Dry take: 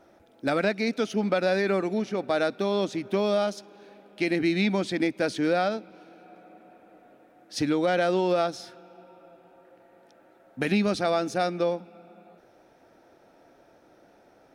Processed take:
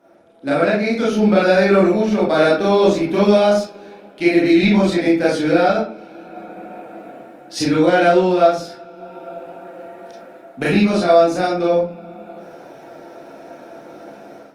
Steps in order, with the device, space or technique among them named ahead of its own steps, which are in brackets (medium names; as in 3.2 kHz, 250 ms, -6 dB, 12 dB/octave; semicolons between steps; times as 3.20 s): far-field microphone of a smart speaker (reverberation RT60 0.45 s, pre-delay 26 ms, DRR -6.5 dB; high-pass 120 Hz 24 dB/octave; level rider; trim -1 dB; Opus 32 kbps 48 kHz)